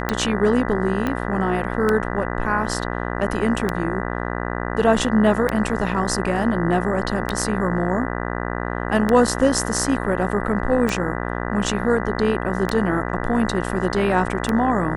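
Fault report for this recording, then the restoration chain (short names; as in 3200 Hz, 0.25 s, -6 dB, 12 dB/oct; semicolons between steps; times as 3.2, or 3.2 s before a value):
buzz 60 Hz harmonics 33 -26 dBFS
tick 33 1/3 rpm -7 dBFS
1.07 pop -11 dBFS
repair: de-click; de-hum 60 Hz, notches 33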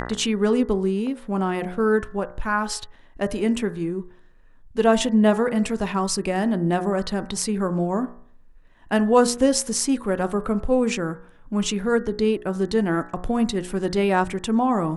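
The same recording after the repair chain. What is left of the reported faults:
1.07 pop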